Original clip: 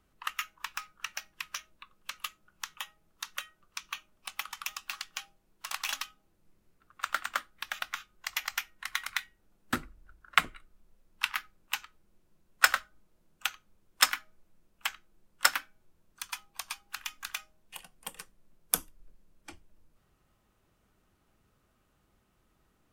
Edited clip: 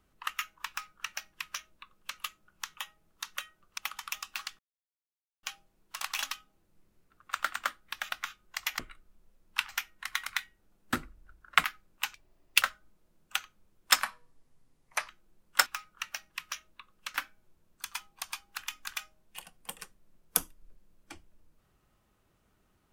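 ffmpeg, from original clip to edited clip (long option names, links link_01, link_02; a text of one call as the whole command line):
ffmpeg -i in.wav -filter_complex "[0:a]asplit=12[link_01][link_02][link_03][link_04][link_05][link_06][link_07][link_08][link_09][link_10][link_11][link_12];[link_01]atrim=end=3.782[link_13];[link_02]atrim=start=4.318:end=5.13,asetpts=PTS-STARTPTS,afade=type=out:start_time=0.808:duration=0.004:curve=hsin,apad=pad_dur=0.84[link_14];[link_03]atrim=start=5.13:end=8.492,asetpts=PTS-STARTPTS,afade=type=in:duration=0.004:curve=hsin[link_15];[link_04]atrim=start=10.438:end=11.342[link_16];[link_05]atrim=start=8.488:end=10.442[link_17];[link_06]atrim=start=11.338:end=11.844[link_18];[link_07]atrim=start=11.84:end=12.72,asetpts=PTS-STARTPTS,asetrate=81144,aresample=44100,atrim=end_sample=21091,asetpts=PTS-STARTPTS[link_19];[link_08]atrim=start=12.716:end=14.124[link_20];[link_09]atrim=start=14.12:end=14.94,asetpts=PTS-STARTPTS,asetrate=33957,aresample=44100[link_21];[link_10]atrim=start=14.936:end=15.522[link_22];[link_11]atrim=start=0.688:end=2.172[link_23];[link_12]atrim=start=15.518[link_24];[link_14][link_15]concat=n=2:v=0:a=1[link_25];[link_13][link_25]acrossfade=duration=0.004:curve1=hsin:curve2=hsin[link_26];[link_26][link_16]acrossfade=duration=0.004:curve1=hsin:curve2=hsin[link_27];[link_27][link_17]acrossfade=duration=0.004:curve1=hsin:curve2=hsin[link_28];[link_28][link_18]acrossfade=duration=0.004:curve1=hsin:curve2=hsin[link_29];[link_29][link_19]acrossfade=duration=0.004:curve1=hsin:curve2=hsin[link_30];[link_30][link_20]acrossfade=duration=0.004:curve1=hsin:curve2=hsin[link_31];[link_31][link_21]acrossfade=duration=0.004:curve1=hsin:curve2=hsin[link_32];[link_32][link_22]acrossfade=duration=0.004:curve1=hsin:curve2=hsin[link_33];[link_33][link_23]acrossfade=duration=0.004:curve1=hsin:curve2=hsin[link_34];[link_34][link_24]acrossfade=duration=0.004:curve1=hsin:curve2=hsin" out.wav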